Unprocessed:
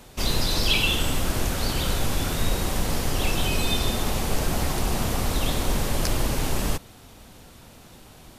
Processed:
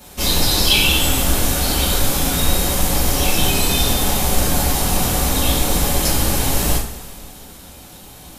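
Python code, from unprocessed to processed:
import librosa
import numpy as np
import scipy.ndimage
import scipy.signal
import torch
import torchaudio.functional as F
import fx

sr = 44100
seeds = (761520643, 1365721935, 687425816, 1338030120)

y = fx.high_shelf(x, sr, hz=8300.0, db=11.0)
y = fx.rev_double_slope(y, sr, seeds[0], early_s=0.38, late_s=2.3, knee_db=-18, drr_db=-7.5)
y = y * librosa.db_to_amplitude(-2.0)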